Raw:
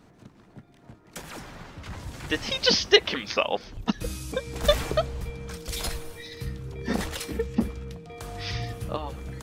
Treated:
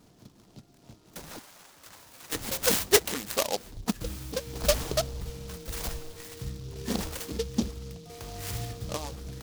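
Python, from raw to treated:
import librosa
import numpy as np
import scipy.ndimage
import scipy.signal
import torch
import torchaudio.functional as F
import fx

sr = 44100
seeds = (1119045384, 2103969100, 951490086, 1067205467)

y = fx.highpass(x, sr, hz=1400.0, slope=6, at=(1.39, 2.35))
y = fx.noise_mod_delay(y, sr, seeds[0], noise_hz=4400.0, depth_ms=0.12)
y = F.gain(torch.from_numpy(y), -3.0).numpy()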